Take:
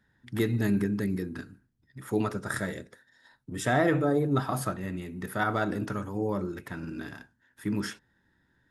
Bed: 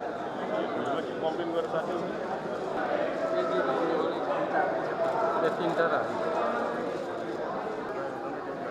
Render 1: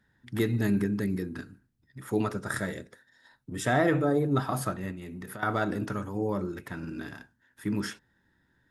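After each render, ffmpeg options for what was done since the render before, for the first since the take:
ffmpeg -i in.wav -filter_complex "[0:a]asettb=1/sr,asplit=3[link_01][link_02][link_03];[link_01]atrim=end=4.914[link_04];[link_02]atrim=start=4.91:end=5.43,asetpts=PTS-STARTPTS,afade=type=in:duration=0.004:curve=qsin,afade=type=out:start_time=0.516:duration=0.004:curve=qsin,acompressor=threshold=-36dB:ratio=12:attack=3.2:release=140:knee=1:detection=peak[link_05];[link_03]atrim=start=5.426[link_06];[link_04][link_05]acrossfade=duration=0.004:curve1=hsin:curve2=qsin[link_07];[link_07][link_06]acrossfade=duration=0.004:curve1=qsin:curve2=hsin" out.wav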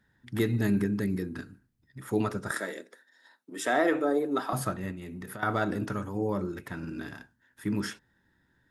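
ffmpeg -i in.wav -filter_complex "[0:a]asettb=1/sr,asplit=3[link_01][link_02][link_03];[link_01]atrim=end=2.514[link_04];[link_02]atrim=start=2.51:end=4.53,asetpts=PTS-STARTPTS,afade=type=in:duration=0.004:curve=qsin,afade=type=out:start_time=2.016:duration=0.004:curve=qsin,highpass=frequency=270:width=0.5412,highpass=frequency=270:width=1.3066[link_05];[link_03]atrim=start=4.526[link_06];[link_04][link_05]acrossfade=duration=0.004:curve1=hsin:curve2=qsin[link_07];[link_07][link_06]acrossfade=duration=0.004:curve1=qsin:curve2=hsin" out.wav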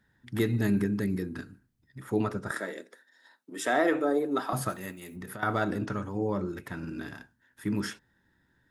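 ffmpeg -i in.wav -filter_complex "[0:a]asettb=1/sr,asplit=3[link_01][link_02][link_03];[link_01]atrim=end=2.024[link_04];[link_02]atrim=start=2.02:end=2.78,asetpts=PTS-STARTPTS,afade=type=in:duration=0.004:curve=qsin,afade=type=out:start_time=0.756:duration=0.004:curve=qsin,highshelf=frequency=3100:gain=-6[link_05];[link_03]atrim=start=2.776[link_06];[link_04][link_05]acrossfade=duration=0.004:curve1=hsin:curve2=qsin[link_07];[link_07][link_06]acrossfade=duration=0.004:curve1=qsin:curve2=hsin,asplit=3[link_08][link_09][link_10];[link_08]afade=type=out:start_time=4.68:duration=0.02[link_11];[link_09]aemphasis=mode=production:type=bsi,afade=type=in:start_time=4.68:duration=0.02,afade=type=out:start_time=5.15:duration=0.02[link_12];[link_10]afade=type=in:start_time=5.15:duration=0.02[link_13];[link_11][link_12][link_13]amix=inputs=3:normalize=0,asettb=1/sr,asplit=3[link_14][link_15][link_16];[link_14]atrim=end=5.784[link_17];[link_15]atrim=start=5.78:end=6.47,asetpts=PTS-STARTPTS,afade=type=in:duration=0.004:curve=qsin,afade=type=out:start_time=0.686:duration=0.004:curve=qsin,lowpass=7300[link_18];[link_16]atrim=start=6.466[link_19];[link_17][link_18]acrossfade=duration=0.004:curve1=hsin:curve2=qsin[link_20];[link_20][link_19]acrossfade=duration=0.004:curve1=qsin:curve2=hsin" out.wav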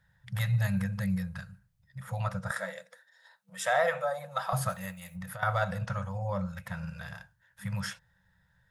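ffmpeg -i in.wav -af "afftfilt=real='re*(1-between(b*sr/4096,200,480))':imag='im*(1-between(b*sr/4096,200,480))':win_size=4096:overlap=0.75,lowshelf=frequency=170:gain=5" out.wav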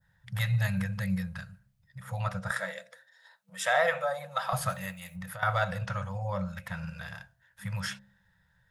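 ffmpeg -i in.wav -af "bandreject=frequency=66.9:width_type=h:width=4,bandreject=frequency=133.8:width_type=h:width=4,bandreject=frequency=200.7:width_type=h:width=4,bandreject=frequency=267.6:width_type=h:width=4,bandreject=frequency=334.5:width_type=h:width=4,bandreject=frequency=401.4:width_type=h:width=4,bandreject=frequency=468.3:width_type=h:width=4,bandreject=frequency=535.2:width_type=h:width=4,bandreject=frequency=602.1:width_type=h:width=4,bandreject=frequency=669:width_type=h:width=4,bandreject=frequency=735.9:width_type=h:width=4,adynamicequalizer=threshold=0.00398:dfrequency=2800:dqfactor=0.82:tfrequency=2800:tqfactor=0.82:attack=5:release=100:ratio=0.375:range=2.5:mode=boostabove:tftype=bell" out.wav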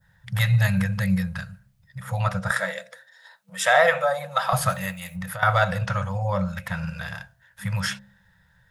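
ffmpeg -i in.wav -af "volume=8dB" out.wav

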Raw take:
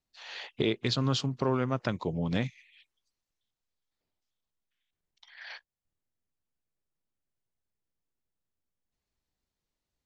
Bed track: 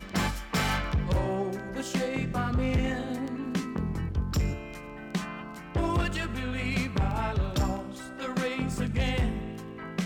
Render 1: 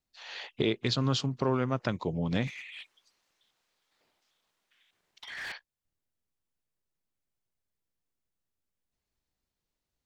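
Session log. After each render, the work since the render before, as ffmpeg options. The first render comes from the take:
ffmpeg -i in.wav -filter_complex "[0:a]asettb=1/sr,asplit=3[link_01][link_02][link_03];[link_01]atrim=end=2.474[link_04];[link_02]atrim=start=2.47:end=5.52,asetpts=PTS-STARTPTS,afade=type=in:duration=0.004:curve=qsin,afade=type=out:start_time=3.046:duration=0.004:curve=qsin,asplit=2[link_05][link_06];[link_06]highpass=frequency=720:poles=1,volume=25dB,asoftclip=type=tanh:threshold=-31dB[link_07];[link_05][link_07]amix=inputs=2:normalize=0,lowpass=frequency=3200:poles=1,volume=-6dB[link_08];[link_03]atrim=start=5.516[link_09];[link_04][link_08]acrossfade=duration=0.004:curve1=hsin:curve2=qsin[link_10];[link_10][link_09]acrossfade=duration=0.004:curve1=qsin:curve2=hsin" out.wav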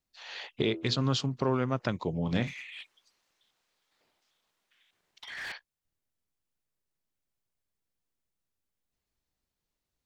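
ffmpeg -i in.wav -filter_complex "[0:a]asettb=1/sr,asplit=3[link_01][link_02][link_03];[link_01]atrim=end=0.604[link_04];[link_02]atrim=start=0.6:end=1.02,asetpts=PTS-STARTPTS,afade=type=in:duration=0.004:curve=qsin,afade=type=out:start_time=0.416:duration=0.004:curve=qsin,bandreject=frequency=82.08:width_type=h:width=4,bandreject=frequency=164.16:width_type=h:width=4,bandreject=frequency=246.24:width_type=h:width=4,bandreject=frequency=328.32:width_type=h:width=4,bandreject=frequency=410.4:width_type=h:width=4,bandreject=frequency=492.48:width_type=h:width=4,bandreject=frequency=574.56:width_type=h:width=4,bandreject=frequency=656.64:width_type=h:width=4,bandreject=frequency=738.72:width_type=h:width=4,bandreject=frequency=820.8:width_type=h:width=4,bandreject=frequency=902.88:width_type=h:width=4,bandreject=frequency=984.96:width_type=h:width=4,bandreject=frequency=1067.04:width_type=h:width=4,bandreject=frequency=1149.12:width_type=h:width=4,bandreject=frequency=1231.2:width_type=h:width=4,bandreject=frequency=1313.28:width_type=h:width=4,bandreject=frequency=1395.36:width_type=h:width=4,bandreject=frequency=1477.44:width_type=h:width=4[link_05];[link_03]atrim=start=1.016[link_06];[link_04][link_05]acrossfade=duration=0.004:curve1=hsin:curve2=qsin[link_07];[link_07][link_06]acrossfade=duration=0.004:curve1=qsin:curve2=hsin,asettb=1/sr,asplit=3[link_08][link_09][link_10];[link_08]atrim=end=2.234[link_11];[link_09]atrim=start=2.23:end=2.81,asetpts=PTS-STARTPTS,afade=type=in:duration=0.004:curve=qsin,afade=type=out:start_time=0.576:duration=0.004:curve=qsin,asplit=2[link_12][link_13];[link_13]adelay=34,volume=-9.5dB[link_14];[link_12][link_14]amix=inputs=2:normalize=0,atrim=end_sample=25578[link_15];[link_10]atrim=start=2.806[link_16];[link_11][link_15]acrossfade=duration=0.004:curve1=hsin:curve2=qsin[link_17];[link_17][link_16]acrossfade=duration=0.004:curve1=qsin:curve2=hsin" out.wav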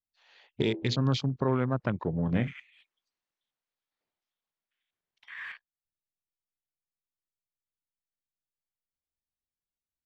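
ffmpeg -i in.wav -af "afwtdn=0.0112,bass=frequency=250:gain=3,treble=frequency=4000:gain=-4" out.wav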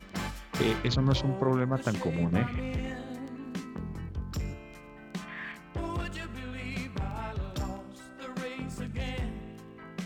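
ffmpeg -i in.wav -i bed.wav -filter_complex "[1:a]volume=-7dB[link_01];[0:a][link_01]amix=inputs=2:normalize=0" out.wav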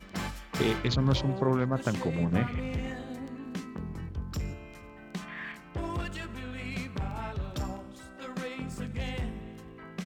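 ffmpeg -i in.wav -filter_complex "[0:a]asplit=2[link_01][link_02];[link_02]adelay=449,volume=-21dB,highshelf=frequency=4000:gain=-10.1[link_03];[link_01][link_03]amix=inputs=2:normalize=0" out.wav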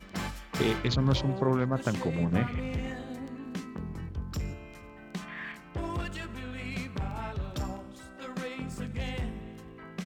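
ffmpeg -i in.wav -af anull out.wav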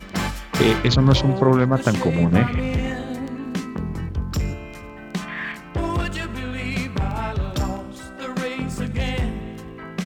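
ffmpeg -i in.wav -af "volume=10.5dB" out.wav

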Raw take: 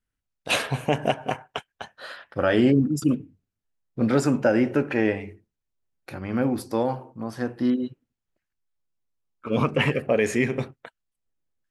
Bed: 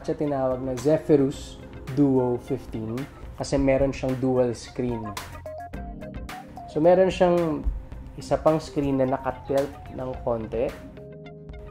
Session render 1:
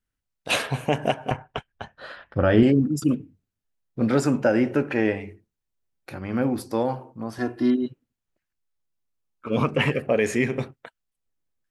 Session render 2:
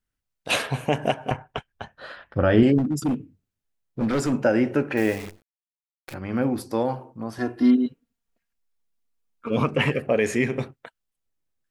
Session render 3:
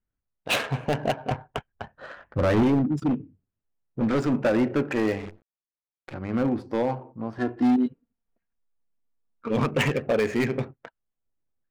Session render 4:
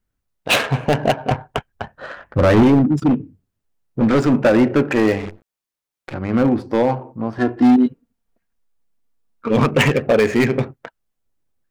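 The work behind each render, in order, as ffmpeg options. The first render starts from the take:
ffmpeg -i in.wav -filter_complex "[0:a]asettb=1/sr,asplit=3[link_01][link_02][link_03];[link_01]atrim=end=1.314[link_04];[link_02]atrim=start=1.31:end=2.63,asetpts=PTS-STARTPTS,afade=type=in:duration=0.004:curve=qsin,afade=type=out:start_time=1.316:duration=0.004:curve=qsin,aemphasis=mode=reproduction:type=bsi[link_05];[link_03]atrim=start=2.626[link_06];[link_04][link_05]acrossfade=duration=0.004:curve1=hsin:curve2=qsin[link_07];[link_07][link_06]acrossfade=duration=0.004:curve1=qsin:curve2=hsin,asettb=1/sr,asplit=3[link_08][link_09][link_10];[link_08]atrim=end=7.384[link_11];[link_09]atrim=start=7.38:end=7.86,asetpts=PTS-STARTPTS,afade=type=in:duration=0.004:curve=qsin,afade=type=out:start_time=0.476:duration=0.004:curve=qsin,aecho=1:1:2.9:0.86,atrim=end_sample=21168[link_12];[link_10]atrim=start=7.856[link_13];[link_11][link_12]acrossfade=duration=0.004:curve1=hsin:curve2=qsin[link_14];[link_14][link_13]acrossfade=duration=0.004:curve1=qsin:curve2=hsin" out.wav
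ffmpeg -i in.wav -filter_complex "[0:a]asettb=1/sr,asplit=3[link_01][link_02][link_03];[link_01]atrim=end=2.784[link_04];[link_02]atrim=start=2.78:end=4.33,asetpts=PTS-STARTPTS,afade=type=in:duration=0.004:curve=qsin,afade=type=out:start_time=1.546:duration=0.004:curve=qsin,asoftclip=type=hard:threshold=-19dB[link_05];[link_03]atrim=start=4.326[link_06];[link_04][link_05]acrossfade=duration=0.004:curve1=hsin:curve2=qsin[link_07];[link_07][link_06]acrossfade=duration=0.004:curve1=qsin:curve2=hsin,asettb=1/sr,asplit=3[link_08][link_09][link_10];[link_08]atrim=end=4.974[link_11];[link_09]atrim=start=4.97:end=6.14,asetpts=PTS-STARTPTS,afade=type=in:duration=0.004:curve=qsin,afade=type=out:start_time=1.166:duration=0.004:curve=qsin,acrusher=bits=7:dc=4:mix=0:aa=0.000001[link_12];[link_10]atrim=start=6.136[link_13];[link_11][link_12]acrossfade=duration=0.004:curve1=hsin:curve2=qsin[link_14];[link_14][link_13]acrossfade=duration=0.004:curve1=qsin:curve2=hsin,asettb=1/sr,asplit=3[link_15][link_16][link_17];[link_15]atrim=end=7.604[link_18];[link_16]atrim=start=7.6:end=9.51,asetpts=PTS-STARTPTS,afade=type=in:duration=0.004:curve=qsin,afade=type=out:start_time=1.906:duration=0.004:curve=qsin,aecho=1:1:4.3:0.65,atrim=end_sample=84231[link_19];[link_17]atrim=start=9.506[link_20];[link_18][link_19]acrossfade=duration=0.004:curve1=hsin:curve2=qsin[link_21];[link_21][link_20]acrossfade=duration=0.004:curve1=qsin:curve2=hsin" out.wav
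ffmpeg -i in.wav -af "adynamicsmooth=sensitivity=4:basefreq=1700,asoftclip=type=hard:threshold=-17dB" out.wav
ffmpeg -i in.wav -af "volume=8.5dB" out.wav

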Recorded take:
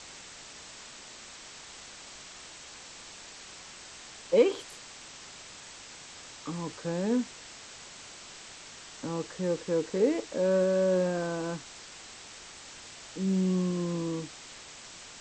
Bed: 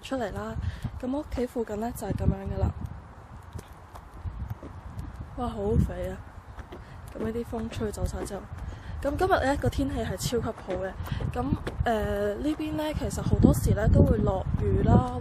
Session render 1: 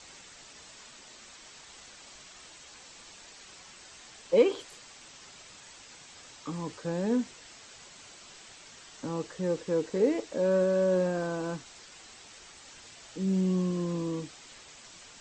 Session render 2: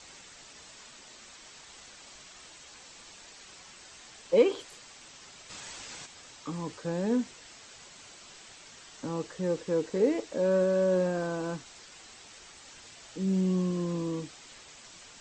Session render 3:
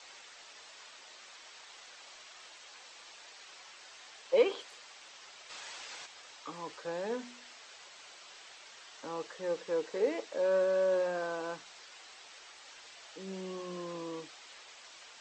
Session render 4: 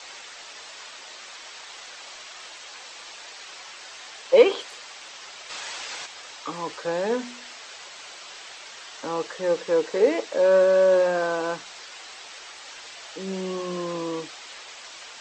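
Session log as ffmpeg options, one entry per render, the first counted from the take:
ffmpeg -i in.wav -af "afftdn=noise_reduction=6:noise_floor=-48" out.wav
ffmpeg -i in.wav -filter_complex "[0:a]asplit=3[link_01][link_02][link_03];[link_01]afade=type=out:start_time=5.49:duration=0.02[link_04];[link_02]acontrast=79,afade=type=in:start_time=5.49:duration=0.02,afade=type=out:start_time=6.05:duration=0.02[link_05];[link_03]afade=type=in:start_time=6.05:duration=0.02[link_06];[link_04][link_05][link_06]amix=inputs=3:normalize=0" out.wav
ffmpeg -i in.wav -filter_complex "[0:a]acrossover=split=430 6100:gain=0.112 1 0.224[link_01][link_02][link_03];[link_01][link_02][link_03]amix=inputs=3:normalize=0,bandreject=frequency=61.06:width_type=h:width=4,bandreject=frequency=122.12:width_type=h:width=4,bandreject=frequency=183.18:width_type=h:width=4,bandreject=frequency=244.24:width_type=h:width=4" out.wav
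ffmpeg -i in.wav -af "volume=11dB" out.wav

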